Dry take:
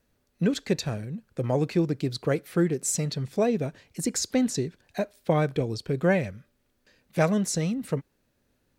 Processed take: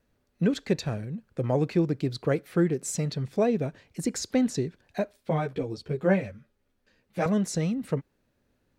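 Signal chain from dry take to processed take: treble shelf 4.3 kHz -7.5 dB; 5.17–7.26 s: three-phase chorus

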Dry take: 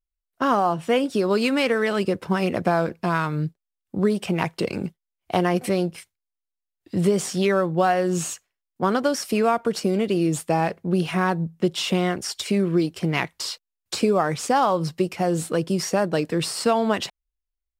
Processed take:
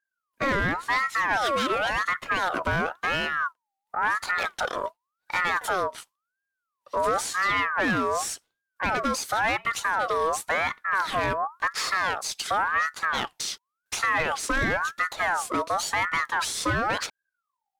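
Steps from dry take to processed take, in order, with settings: wow and flutter 27 cents; saturation -19.5 dBFS, distortion -11 dB; ring modulator with a swept carrier 1.2 kHz, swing 35%, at 0.93 Hz; trim +2.5 dB

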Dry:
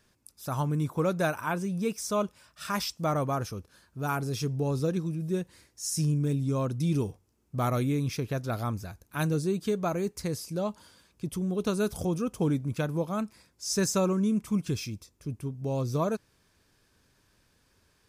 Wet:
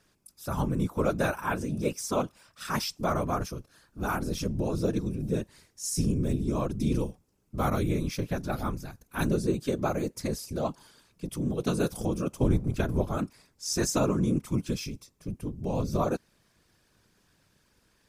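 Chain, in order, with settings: 12.42–13.17 s: octave divider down 2 oct, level +2 dB; whisper effect

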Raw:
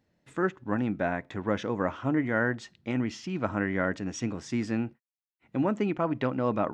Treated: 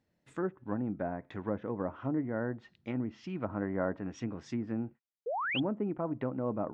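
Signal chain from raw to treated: low-pass that closes with the level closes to 900 Hz, closed at -25 dBFS; 3.61–4.07 s: dynamic bell 950 Hz, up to +7 dB, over -44 dBFS, Q 0.71; 5.26–5.60 s: painted sound rise 430–3500 Hz -28 dBFS; trim -5.5 dB

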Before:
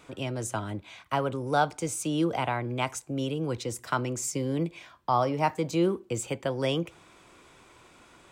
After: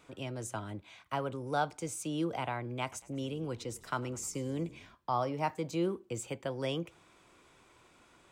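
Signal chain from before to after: 2.81–4.95 s: frequency-shifting echo 103 ms, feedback 55%, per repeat -35 Hz, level -20 dB; trim -7 dB

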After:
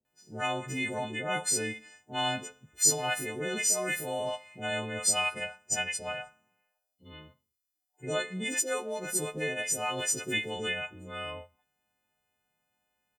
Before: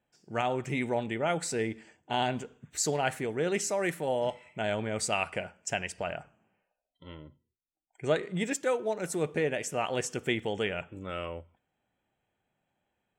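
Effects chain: partials quantised in pitch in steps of 3 st; bands offset in time lows, highs 50 ms, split 520 Hz; trim -3 dB

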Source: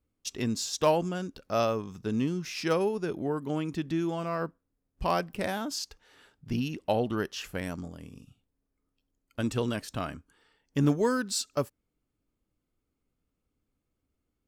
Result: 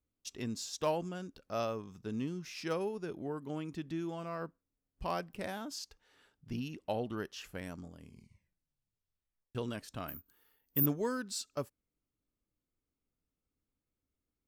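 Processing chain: 8.00 s: tape stop 1.55 s; 10.08–10.86 s: careless resampling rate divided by 3×, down none, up zero stuff; trim -8.5 dB

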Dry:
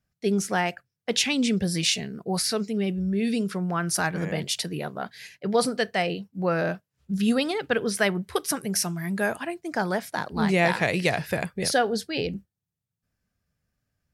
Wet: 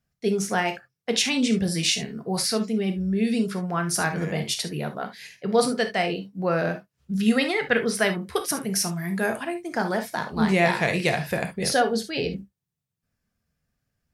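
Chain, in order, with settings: 7.26–7.91 s: peaking EQ 2 kHz +12.5 dB 0.36 oct; gated-style reverb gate 90 ms flat, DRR 6 dB

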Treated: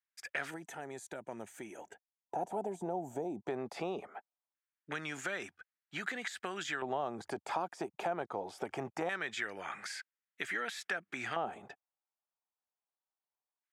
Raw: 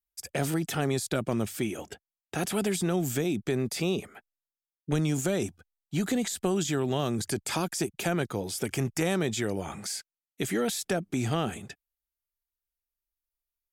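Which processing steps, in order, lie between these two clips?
LFO band-pass square 0.22 Hz 820–1700 Hz; compression 2:1, threshold -45 dBFS, peak gain reduction 8 dB; time-frequency box 0.50–3.48 s, 1–5.8 kHz -14 dB; trim +8 dB

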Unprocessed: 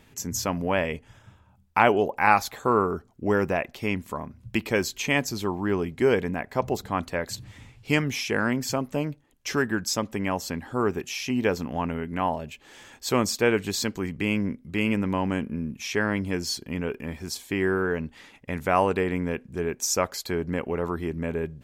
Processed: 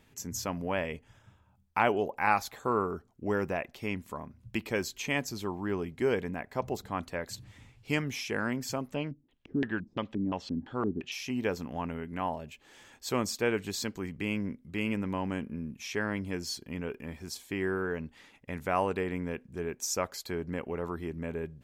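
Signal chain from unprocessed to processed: 8.94–11.12 s: LFO low-pass square 2.9 Hz 270–3300 Hz; trim -7 dB

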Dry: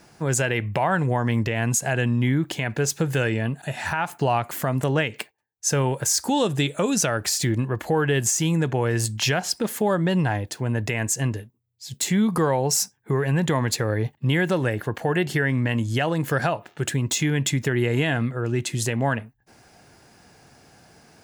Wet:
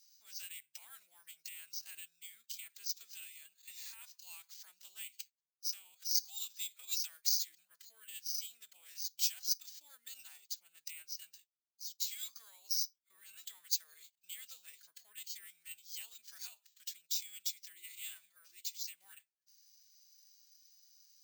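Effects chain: formant-preserving pitch shift +6 st; Butterworth band-pass 5.9 kHz, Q 1.7; careless resampling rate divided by 4×, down filtered, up zero stuff; trim -5 dB

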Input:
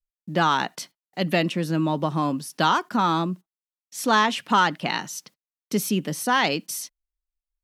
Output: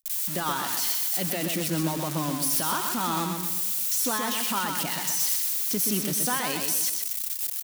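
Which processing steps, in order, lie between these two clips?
zero-crossing glitches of -14.5 dBFS; short-mantissa float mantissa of 2-bit; peak limiter -18 dBFS, peak gain reduction 12 dB; on a send: feedback delay 126 ms, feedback 43%, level -5 dB; on the sum: endings held to a fixed fall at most 190 dB/s; trim -2 dB

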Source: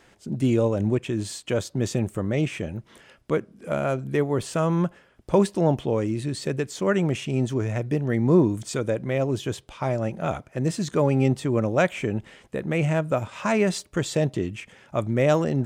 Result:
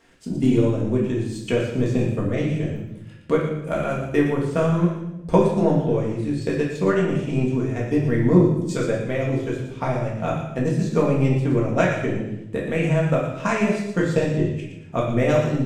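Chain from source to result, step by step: transient shaper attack +7 dB, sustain -11 dB; feedback echo behind a high-pass 116 ms, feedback 31%, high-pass 2.2 kHz, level -7 dB; simulated room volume 230 m³, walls mixed, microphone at 1.7 m; trim -5.5 dB

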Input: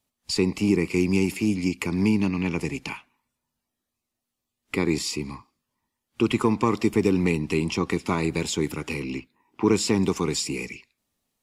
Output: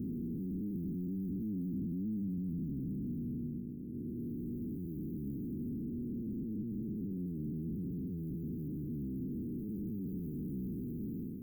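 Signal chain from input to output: spectral blur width 1120 ms; treble shelf 9.2 kHz -8.5 dB; in parallel at -12 dB: fuzz box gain 49 dB, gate -58 dBFS; on the sum: waveshaping leveller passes 1; tone controls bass -11 dB, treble -13 dB; peak limiter -23.5 dBFS, peak gain reduction 10 dB; inverse Chebyshev band-stop 750–6500 Hz, stop band 60 dB

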